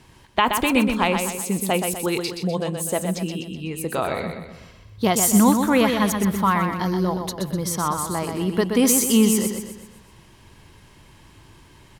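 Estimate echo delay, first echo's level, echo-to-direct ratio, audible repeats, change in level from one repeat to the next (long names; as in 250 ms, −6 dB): 125 ms, −6.0 dB, −5.0 dB, 5, −6.5 dB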